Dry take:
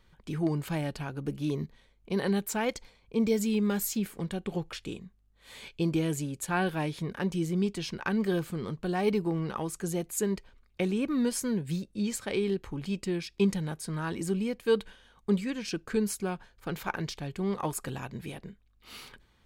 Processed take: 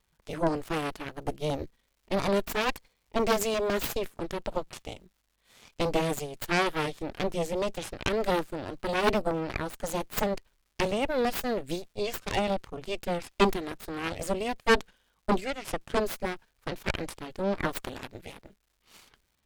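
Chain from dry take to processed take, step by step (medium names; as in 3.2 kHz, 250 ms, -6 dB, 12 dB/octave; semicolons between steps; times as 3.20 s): Chebyshev shaper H 3 -11 dB, 6 -11 dB, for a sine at -13.5 dBFS; crackle 340 per s -63 dBFS; trim +4 dB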